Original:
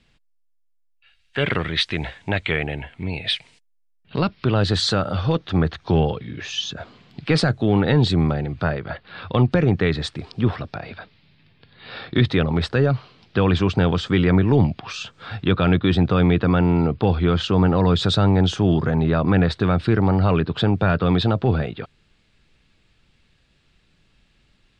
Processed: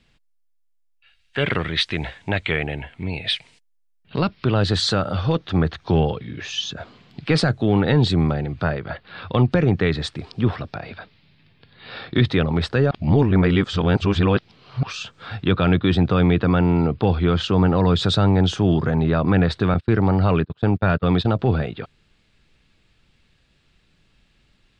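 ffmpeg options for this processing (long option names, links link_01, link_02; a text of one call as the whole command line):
ffmpeg -i in.wav -filter_complex "[0:a]asettb=1/sr,asplit=3[link_01][link_02][link_03];[link_01]atrim=end=19.744[link_04];[link_02]atrim=start=19.74:end=21.39,asetpts=PTS-STARTPTS,afade=type=in:duration=0.004:curve=qsin,afade=type=out:start_time=1.646:duration=0.004:curve=qsin,agate=range=-29dB:threshold=-22dB:ratio=16:release=100:detection=peak[link_05];[link_03]atrim=start=21.386[link_06];[link_04][link_05]acrossfade=duration=0.004:curve1=hsin:curve2=qsin[link_07];[link_07][link_06]acrossfade=duration=0.004:curve1=qsin:curve2=hsin,asplit=3[link_08][link_09][link_10];[link_08]atrim=end=12.912[link_11];[link_09]atrim=start=12.908:end=14.832,asetpts=PTS-STARTPTS,areverse[link_12];[link_10]atrim=start=14.828[link_13];[link_11][link_12]acrossfade=duration=0.004:curve1=hsin:curve2=hsin[link_14];[link_14][link_13]acrossfade=duration=0.004:curve1=hsin:curve2=hsin" out.wav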